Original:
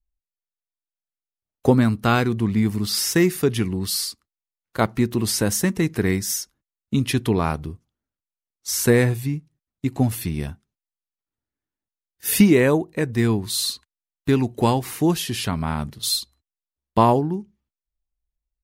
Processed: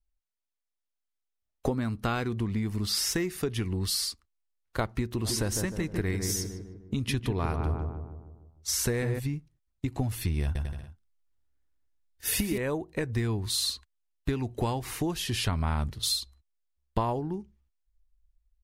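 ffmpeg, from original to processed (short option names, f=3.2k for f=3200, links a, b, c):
-filter_complex "[0:a]asplit=3[a][b][c];[a]afade=t=out:st=5.21:d=0.02[d];[b]asplit=2[e][f];[f]adelay=152,lowpass=f=1.3k:p=1,volume=-7dB,asplit=2[g][h];[h]adelay=152,lowpass=f=1.3k:p=1,volume=0.54,asplit=2[i][j];[j]adelay=152,lowpass=f=1.3k:p=1,volume=0.54,asplit=2[k][l];[l]adelay=152,lowpass=f=1.3k:p=1,volume=0.54,asplit=2[m][n];[n]adelay=152,lowpass=f=1.3k:p=1,volume=0.54,asplit=2[o][p];[p]adelay=152,lowpass=f=1.3k:p=1,volume=0.54,asplit=2[q][r];[r]adelay=152,lowpass=f=1.3k:p=1,volume=0.54[s];[e][g][i][k][m][o][q][s]amix=inputs=8:normalize=0,afade=t=in:st=5.21:d=0.02,afade=t=out:st=9.18:d=0.02[t];[c]afade=t=in:st=9.18:d=0.02[u];[d][t][u]amix=inputs=3:normalize=0,asettb=1/sr,asplit=3[v][w][x];[v]atrim=end=10.434[y];[w]atrim=start=10.43:end=12.58,asetpts=PTS-STARTPTS,afade=t=in:d=0.004:c=qsin,afade=t=out:st=2.146:d=0.004:c=qsin,aecho=1:1:120|216|292.8|354.2|403.4:0.631|0.398|0.251|0.158|0.1,atrim=end_sample=94815[z];[x]atrim=start=12.576[aa];[y][z]acrossfade=d=0.004:c1=hsin:c2=qsin[ab];[ab][aa]acrossfade=d=0.004:c1=qsin:c2=hsin,highshelf=f=12k:g=-9,acompressor=threshold=-24dB:ratio=6,asubboost=boost=7:cutoff=64,volume=-1dB"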